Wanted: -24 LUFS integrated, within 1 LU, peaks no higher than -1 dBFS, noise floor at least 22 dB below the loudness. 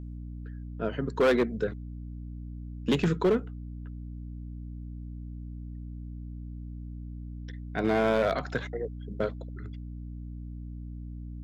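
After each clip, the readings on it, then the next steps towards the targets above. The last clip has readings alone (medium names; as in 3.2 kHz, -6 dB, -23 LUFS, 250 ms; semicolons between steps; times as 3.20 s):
clipped samples 0.7%; clipping level -18.5 dBFS; hum 60 Hz; highest harmonic 300 Hz; hum level -37 dBFS; loudness -32.5 LUFS; peak level -18.5 dBFS; loudness target -24.0 LUFS
-> clip repair -18.5 dBFS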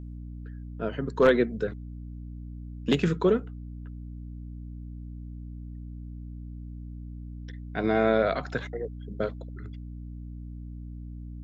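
clipped samples 0.0%; hum 60 Hz; highest harmonic 300 Hz; hum level -37 dBFS
-> de-hum 60 Hz, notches 5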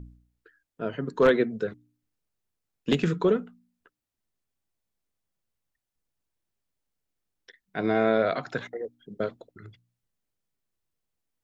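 hum not found; loudness -27.0 LUFS; peak level -9.0 dBFS; loudness target -24.0 LUFS
-> trim +3 dB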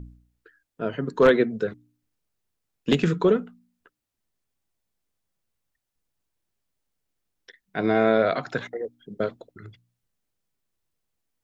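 loudness -24.0 LUFS; peak level -6.0 dBFS; noise floor -82 dBFS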